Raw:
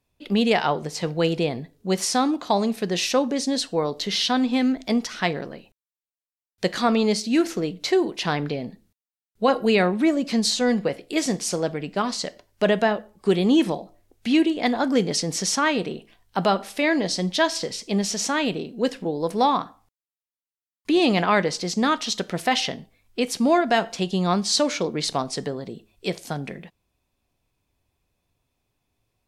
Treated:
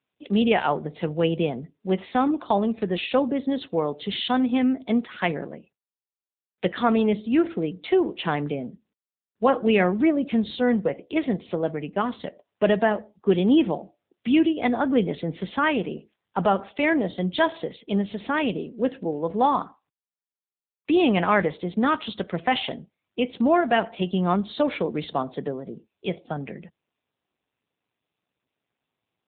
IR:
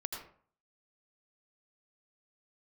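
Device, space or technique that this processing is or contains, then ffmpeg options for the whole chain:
mobile call with aggressive noise cancelling: -af "highpass=f=130:w=0.5412,highpass=f=130:w=1.3066,afftdn=nr=17:nf=-45" -ar 8000 -c:a libopencore_amrnb -b:a 7950

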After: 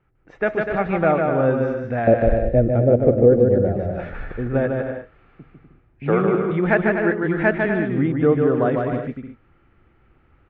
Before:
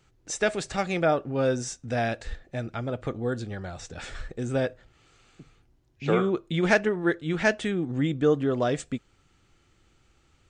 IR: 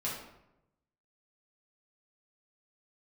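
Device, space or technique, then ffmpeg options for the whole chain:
action camera in a waterproof case: -filter_complex "[0:a]asettb=1/sr,asplit=3[a][b][c];[a]atrim=end=2.074[d];[b]atrim=start=2.07:end=3.78,asetpts=PTS-STARTPTS,afade=t=in:d=0.004:c=qsin,afade=t=out:st=1.706:d=0.004:c=qsin,lowshelf=f=760:t=q:w=3:g=11[e];[c]atrim=start=3.776[f];[d][e]acrossfade=d=0.004:c1=hsin:c2=qsin[g];[g][f]acrossfade=d=0.004:c1=qsin:c2=hsin,lowpass=f=2.1k:w=0.5412,lowpass=f=2.1k:w=1.3066,aecho=1:1:150|247.5|310.9|352.1|378.8:0.631|0.398|0.251|0.158|0.1,dynaudnorm=f=150:g=5:m=7dB,volume=-2dB" -ar 32000 -c:a aac -b:a 64k

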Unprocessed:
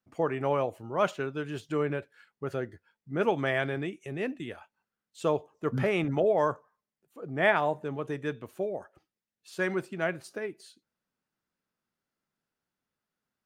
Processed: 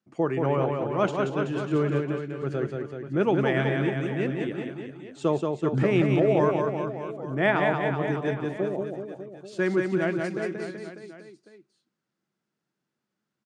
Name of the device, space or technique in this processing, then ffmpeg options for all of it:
car door speaker: -filter_complex "[0:a]highpass=110,equalizer=f=140:t=q:w=4:g=8,equalizer=f=200:t=q:w=4:g=7,equalizer=f=340:t=q:w=4:g=9,lowpass=f=8.3k:w=0.5412,lowpass=f=8.3k:w=1.3066,asettb=1/sr,asplit=3[a][b][c];[a]atrim=end=0.464[d];[b]atrim=start=0.46:end=0.9,asetpts=PTS-STARTPTS,afade=t=in:d=0.004:c=qsin,afade=t=out:st=0.436:d=0.004:c=qsin,lowpass=4.6k[e];[c]atrim=start=0.896[f];[d][e]acrossfade=d=0.004:c1=hsin:c2=qsin[g];[g][f]acrossfade=d=0.004:c1=qsin:c2=hsin,aecho=1:1:180|378|595.8|835.4|1099:0.631|0.398|0.251|0.158|0.1"

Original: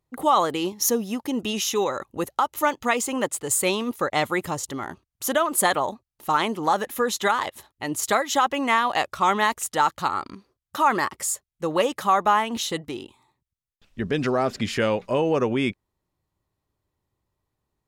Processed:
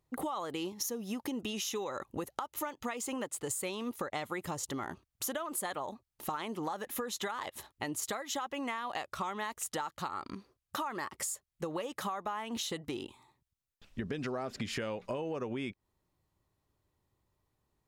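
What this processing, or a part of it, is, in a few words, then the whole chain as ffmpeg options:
serial compression, peaks first: -af "acompressor=threshold=-29dB:ratio=6,acompressor=threshold=-37dB:ratio=2"

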